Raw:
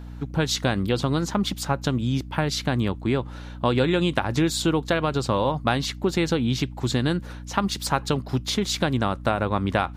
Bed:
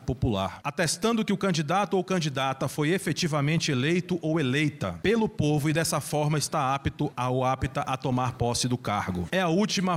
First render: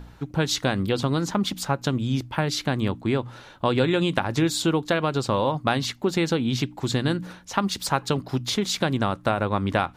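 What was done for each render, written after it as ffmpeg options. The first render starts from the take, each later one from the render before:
-af "bandreject=f=60:t=h:w=4,bandreject=f=120:t=h:w=4,bandreject=f=180:t=h:w=4,bandreject=f=240:t=h:w=4,bandreject=f=300:t=h:w=4"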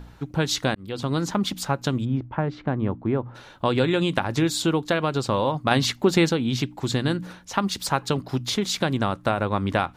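-filter_complex "[0:a]asplit=3[s0][s1][s2];[s0]afade=t=out:st=2.04:d=0.02[s3];[s1]lowpass=1300,afade=t=in:st=2.04:d=0.02,afade=t=out:st=3.34:d=0.02[s4];[s2]afade=t=in:st=3.34:d=0.02[s5];[s3][s4][s5]amix=inputs=3:normalize=0,asplit=4[s6][s7][s8][s9];[s6]atrim=end=0.75,asetpts=PTS-STARTPTS,afade=t=out:st=0.746:d=0.004:c=hsin[s10];[s7]atrim=start=0.75:end=5.712,asetpts=PTS-STARTPTS,afade=t=in:d=0.42[s11];[s8]atrim=start=5.708:end=6.292,asetpts=PTS-STARTPTS,volume=1.68[s12];[s9]atrim=start=6.288[s13];[s10][s11]concat=n=2:v=0:a=1[s14];[s14][s12]acrossfade=d=0.004:c1=hsin:c2=hsin[s15];[s15][s13]acrossfade=d=0.004:c1=hsin:c2=hsin"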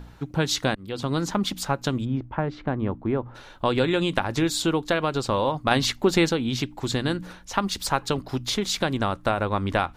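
-af "asubboost=boost=6:cutoff=50"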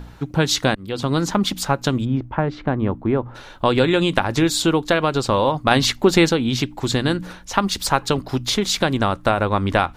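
-af "volume=1.88,alimiter=limit=0.891:level=0:latency=1"

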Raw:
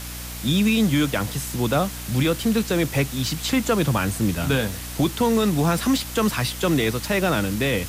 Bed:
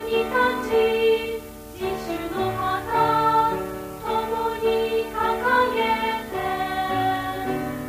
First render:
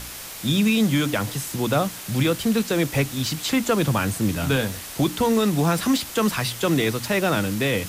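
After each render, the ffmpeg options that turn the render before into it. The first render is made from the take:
-af "bandreject=f=60:t=h:w=4,bandreject=f=120:t=h:w=4,bandreject=f=180:t=h:w=4,bandreject=f=240:t=h:w=4,bandreject=f=300:t=h:w=4"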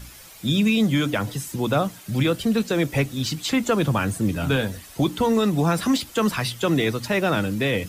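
-af "afftdn=nr=11:nf=-36"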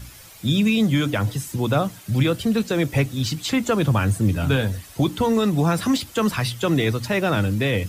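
-af "equalizer=f=99:t=o:w=0.69:g=8.5"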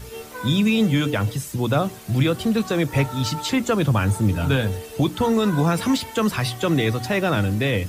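-filter_complex "[1:a]volume=0.188[s0];[0:a][s0]amix=inputs=2:normalize=0"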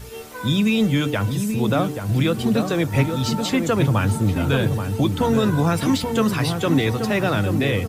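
-filter_complex "[0:a]asplit=2[s0][s1];[s1]adelay=830,lowpass=f=980:p=1,volume=0.562,asplit=2[s2][s3];[s3]adelay=830,lowpass=f=980:p=1,volume=0.48,asplit=2[s4][s5];[s5]adelay=830,lowpass=f=980:p=1,volume=0.48,asplit=2[s6][s7];[s7]adelay=830,lowpass=f=980:p=1,volume=0.48,asplit=2[s8][s9];[s9]adelay=830,lowpass=f=980:p=1,volume=0.48,asplit=2[s10][s11];[s11]adelay=830,lowpass=f=980:p=1,volume=0.48[s12];[s0][s2][s4][s6][s8][s10][s12]amix=inputs=7:normalize=0"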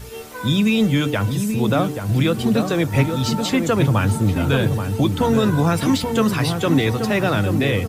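-af "volume=1.19"

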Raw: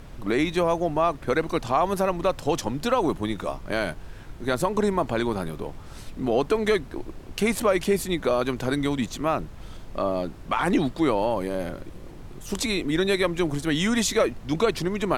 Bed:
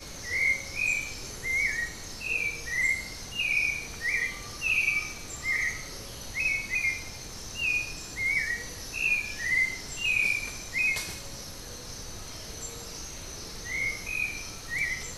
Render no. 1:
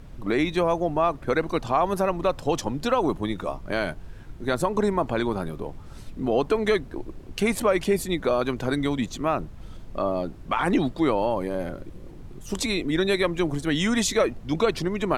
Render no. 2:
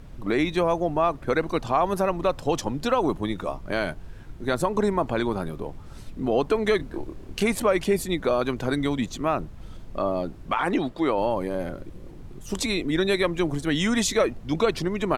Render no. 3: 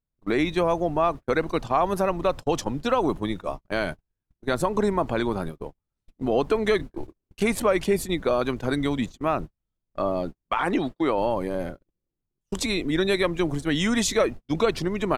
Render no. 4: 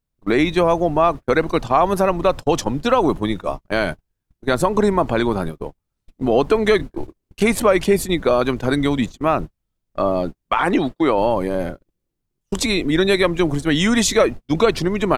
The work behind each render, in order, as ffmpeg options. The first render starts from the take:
-af "afftdn=nr=6:nf=-42"
-filter_complex "[0:a]asplit=3[s0][s1][s2];[s0]afade=t=out:st=6.79:d=0.02[s3];[s1]asplit=2[s4][s5];[s5]adelay=27,volume=0.668[s6];[s4][s6]amix=inputs=2:normalize=0,afade=t=in:st=6.79:d=0.02,afade=t=out:st=7.43:d=0.02[s7];[s2]afade=t=in:st=7.43:d=0.02[s8];[s3][s7][s8]amix=inputs=3:normalize=0,asettb=1/sr,asplit=3[s9][s10][s11];[s9]atrim=end=10.544[s12];[s10]atrim=start=10.54:end=11.18,asetpts=PTS-STARTPTS,afade=t=in:d=0.004:c=qsin,afade=t=out:st=0.636:d=0.004:c=qsin,bass=f=250:g=-7,treble=f=4000:g=-4[s13];[s11]atrim=start=11.176[s14];[s12][s13]acrossfade=d=0.004:c1=hsin:c2=qsin[s15];[s15][s14]acrossfade=d=0.004:c1=qsin:c2=hsin"
-af "agate=range=0.00631:threshold=0.0316:ratio=16:detection=peak"
-af "volume=2.11"

